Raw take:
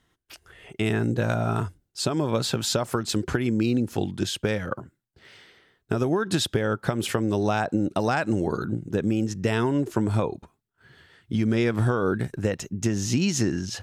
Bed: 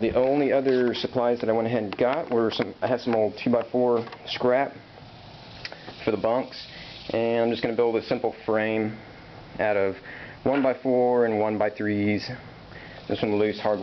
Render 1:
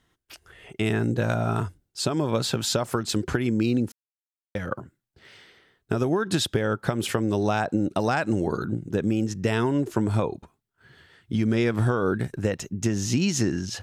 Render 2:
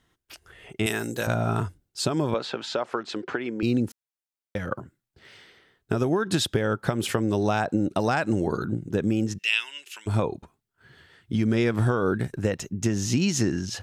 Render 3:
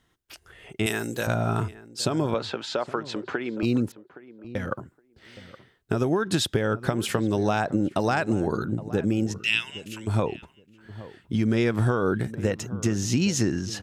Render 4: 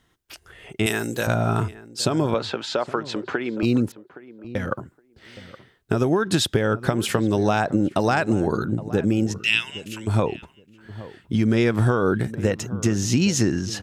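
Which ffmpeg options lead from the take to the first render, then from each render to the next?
-filter_complex "[0:a]asplit=3[a][b][c];[a]atrim=end=3.92,asetpts=PTS-STARTPTS,afade=t=out:st=3.916:d=0.004:c=hsin[d];[b]atrim=start=3.92:end=4.55,asetpts=PTS-STARTPTS,volume=0[e];[c]atrim=start=4.55,asetpts=PTS-STARTPTS,afade=t=in:d=0.004:c=hsin[f];[d][e][f]concat=n=3:v=0:a=1"
-filter_complex "[0:a]asettb=1/sr,asplit=3[a][b][c];[a]atrim=end=0.864[d];[b]atrim=start=0.86:end=1.27,asetpts=PTS-STARTPTS,afade=t=in:d=0.004:c=qsin,afade=t=out:st=0.406:d=0.004:c=qsin,aemphasis=mode=production:type=riaa[e];[c]atrim=start=1.266[f];[d][e]acrossfade=d=0.004:c1=hsin:c2=qsin[g];[g][f]acrossfade=d=0.004:c1=qsin:c2=hsin,asettb=1/sr,asplit=3[h][i][j];[h]atrim=end=2.344[k];[i]atrim=start=2.34:end=3.63,asetpts=PTS-STARTPTS,afade=t=in:d=0.004:c=qsin,afade=t=out:st=1.286:d=0.004:c=qsin,highpass=370,lowpass=3.1k[l];[j]atrim=start=3.626[m];[k][l]acrossfade=d=0.004:c1=hsin:c2=qsin[n];[n][m]acrossfade=d=0.004:c1=qsin:c2=hsin,asplit=3[o][p][q];[o]afade=t=out:st=9.37:d=0.02[r];[p]highpass=f=2.7k:t=q:w=5.6,afade=t=in:st=9.37:d=0.02,afade=t=out:st=10.06:d=0.02[s];[q]afade=t=in:st=10.06:d=0.02[t];[r][s][t]amix=inputs=3:normalize=0"
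-filter_complex "[0:a]asplit=2[a][b];[b]adelay=818,lowpass=f=1.3k:p=1,volume=-16dB,asplit=2[c][d];[d]adelay=818,lowpass=f=1.3k:p=1,volume=0.16[e];[a][c][e]amix=inputs=3:normalize=0"
-af "volume=3.5dB"

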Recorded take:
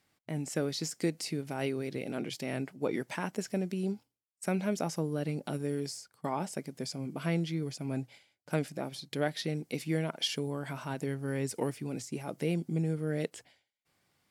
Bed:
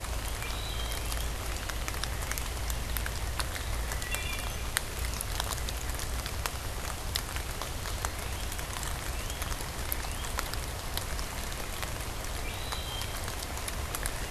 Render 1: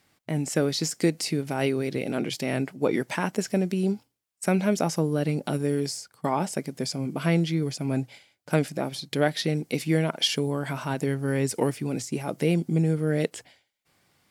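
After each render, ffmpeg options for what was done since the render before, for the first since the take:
-af "volume=8dB"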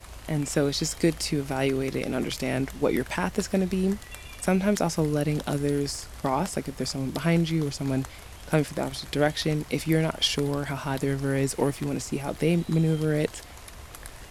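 -filter_complex "[1:a]volume=-8.5dB[a];[0:a][a]amix=inputs=2:normalize=0"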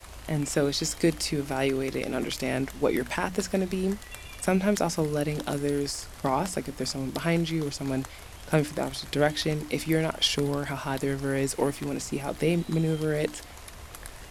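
-af "bandreject=f=60:t=h:w=6,bandreject=f=120:t=h:w=6,bandreject=f=180:t=h:w=6,bandreject=f=240:t=h:w=6,bandreject=f=300:t=h:w=6,adynamicequalizer=threshold=0.0112:dfrequency=140:dqfactor=0.96:tfrequency=140:tqfactor=0.96:attack=5:release=100:ratio=0.375:range=2.5:mode=cutabove:tftype=bell"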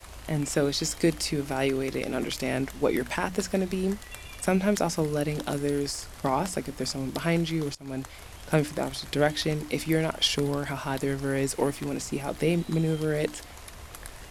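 -filter_complex "[0:a]asplit=2[a][b];[a]atrim=end=7.75,asetpts=PTS-STARTPTS,afade=t=out:st=7.746:d=0.004:c=hsin:silence=0.0841395[c];[b]atrim=start=7.75,asetpts=PTS-STARTPTS,afade=t=in:d=0.56:c=qsin:silence=0.0841395[d];[c][d]concat=n=2:v=0:a=1"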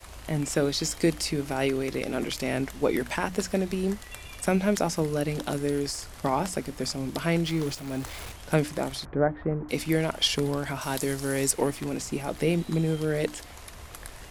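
-filter_complex "[0:a]asettb=1/sr,asplit=3[a][b][c];[a]atrim=end=7.454[d];[b]atrim=start=7.45:end=8.32,asetpts=PTS-STARTPTS,afade=t=in:d=0.004:c=qsin,afade=t=out:st=0.866:d=0.004:c=qsin,aeval=exprs='val(0)+0.5*0.0133*sgn(val(0))':c=same[e];[c]atrim=start=8.316[f];[d][e]acrossfade=d=0.004:c1=hsin:c2=qsin[g];[g][f]acrossfade=d=0.004:c1=qsin:c2=hsin,asettb=1/sr,asplit=3[h][i][j];[h]atrim=end=9.054[k];[i]atrim=start=9.05:end=9.69,asetpts=PTS-STARTPTS,afade=t=in:d=0.004:c=qsin,afade=t=out:st=0.636:d=0.004:c=qsin,lowpass=f=1.4k:w=0.5412,lowpass=f=1.4k:w=1.3066[l];[j]atrim=start=9.686[m];[k][l]acrossfade=d=0.004:c1=hsin:c2=qsin[n];[n][m]acrossfade=d=0.004:c1=qsin:c2=hsin,asettb=1/sr,asplit=3[o][p][q];[o]atrim=end=10.814[r];[p]atrim=start=10.81:end=11.51,asetpts=PTS-STARTPTS,afade=t=in:d=0.004:c=qsin,afade=t=out:st=0.696:d=0.004:c=qsin,bass=f=250:g=-2,treble=f=4k:g=10[s];[q]atrim=start=11.506[t];[r][s]acrossfade=d=0.004:c1=hsin:c2=qsin[u];[u][t]acrossfade=d=0.004:c1=qsin:c2=hsin"

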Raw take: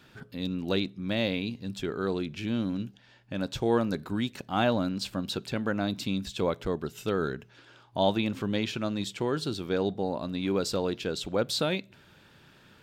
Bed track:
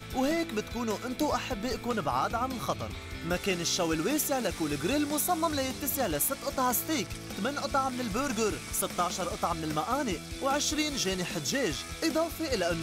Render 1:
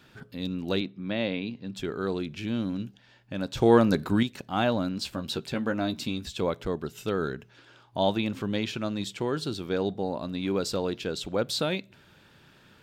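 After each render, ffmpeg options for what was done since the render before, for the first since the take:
-filter_complex "[0:a]asettb=1/sr,asplit=3[a][b][c];[a]atrim=end=0.814[d];[b]atrim=start=0.81:end=1.76,asetpts=PTS-STARTPTS,afade=t=in:d=0.004:c=qsin,afade=t=out:st=0.946:d=0.004:c=qsin,highpass=130,lowpass=3.4k[e];[c]atrim=start=1.756[f];[d][e]acrossfade=d=0.004:c1=hsin:c2=qsin[g];[g][f]acrossfade=d=0.004:c1=qsin:c2=hsin,asettb=1/sr,asplit=3[h][i][j];[h]atrim=end=3.574[k];[i]atrim=start=3.57:end=4.23,asetpts=PTS-STARTPTS,afade=t=in:d=0.004:c=qsin,afade=t=out:st=0.656:d=0.004:c=qsin,acontrast=76[l];[j]atrim=start=4.226[m];[k][l]acrossfade=d=0.004:c1=hsin:c2=qsin[n];[n][m]acrossfade=d=0.004:c1=qsin:c2=hsin,asettb=1/sr,asplit=3[o][p][q];[o]atrim=end=4.974[r];[p]atrim=start=4.97:end=6.37,asetpts=PTS-STARTPTS,afade=t=in:d=0.004:c=qsin,afade=t=out:st=1.396:d=0.004:c=qsin,asplit=2[s][t];[t]adelay=13,volume=-7dB[u];[s][u]amix=inputs=2:normalize=0,atrim=end_sample=61740[v];[q]atrim=start=6.366[w];[r][v]acrossfade=d=0.004:c1=hsin:c2=qsin[x];[x][w]acrossfade=d=0.004:c1=qsin:c2=hsin"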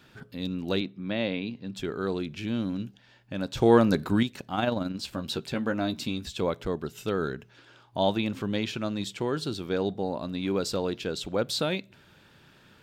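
-filter_complex "[0:a]asplit=3[a][b][c];[a]afade=t=out:st=4.53:d=0.02[d];[b]tremolo=f=22:d=0.462,afade=t=in:st=4.53:d=0.02,afade=t=out:st=5.09:d=0.02[e];[c]afade=t=in:st=5.09:d=0.02[f];[d][e][f]amix=inputs=3:normalize=0"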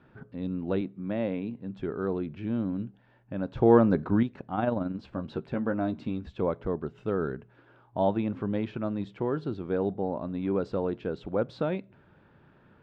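-af "lowpass=1.3k"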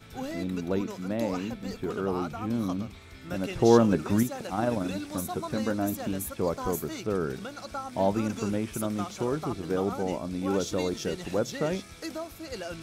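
-filter_complex "[1:a]volume=-8dB[a];[0:a][a]amix=inputs=2:normalize=0"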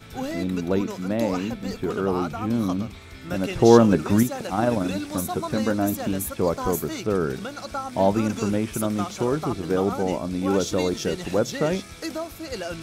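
-af "volume=5.5dB"

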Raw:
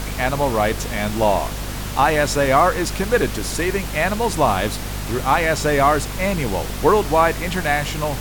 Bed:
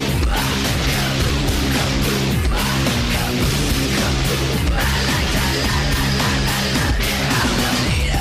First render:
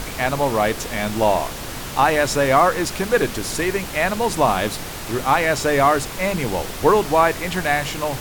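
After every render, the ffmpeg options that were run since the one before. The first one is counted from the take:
-af "bandreject=f=50:t=h:w=6,bandreject=f=100:t=h:w=6,bandreject=f=150:t=h:w=6,bandreject=f=200:t=h:w=6,bandreject=f=250:t=h:w=6"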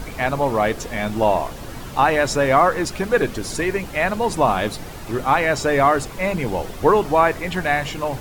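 -af "afftdn=nr=9:nf=-31"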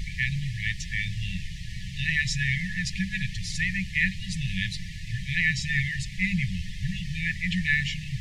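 -af "lowpass=5.3k,afftfilt=real='re*(1-between(b*sr/4096,200,1700))':imag='im*(1-between(b*sr/4096,200,1700))':win_size=4096:overlap=0.75"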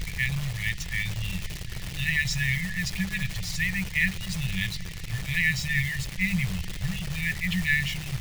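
-af "acrusher=bits=7:dc=4:mix=0:aa=0.000001"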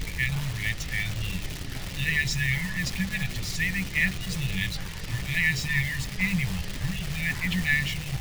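-filter_complex "[1:a]volume=-24dB[a];[0:a][a]amix=inputs=2:normalize=0"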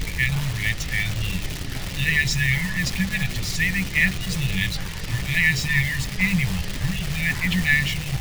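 -af "volume=5dB"

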